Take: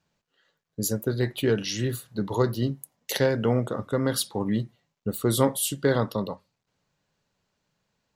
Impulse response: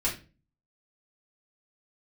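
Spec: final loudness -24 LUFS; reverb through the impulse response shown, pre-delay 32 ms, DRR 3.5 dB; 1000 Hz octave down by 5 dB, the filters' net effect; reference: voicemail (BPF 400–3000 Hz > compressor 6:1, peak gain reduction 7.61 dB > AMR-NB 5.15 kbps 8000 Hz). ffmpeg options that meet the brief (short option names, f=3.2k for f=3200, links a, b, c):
-filter_complex "[0:a]equalizer=f=1k:t=o:g=-6,asplit=2[a][b];[1:a]atrim=start_sample=2205,adelay=32[c];[b][c]afir=irnorm=-1:irlink=0,volume=-11dB[d];[a][d]amix=inputs=2:normalize=0,highpass=400,lowpass=3k,acompressor=threshold=-27dB:ratio=6,volume=12dB" -ar 8000 -c:a libopencore_amrnb -b:a 5150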